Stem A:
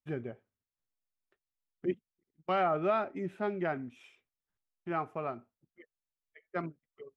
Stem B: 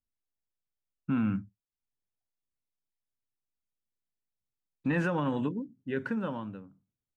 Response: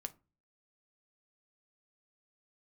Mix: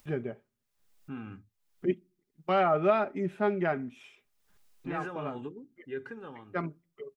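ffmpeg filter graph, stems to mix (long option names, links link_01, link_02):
-filter_complex "[0:a]volume=2dB,asplit=2[link_01][link_02];[link_02]volume=-10.5dB[link_03];[1:a]aecho=1:1:2.5:0.77,volume=-9.5dB,asplit=2[link_04][link_05];[link_05]apad=whole_len=315856[link_06];[link_01][link_06]sidechaincompress=threshold=-41dB:ratio=8:attack=16:release=811[link_07];[2:a]atrim=start_sample=2205[link_08];[link_03][link_08]afir=irnorm=-1:irlink=0[link_09];[link_07][link_04][link_09]amix=inputs=3:normalize=0,aecho=1:1:4.9:0.32,acompressor=mode=upward:threshold=-47dB:ratio=2.5"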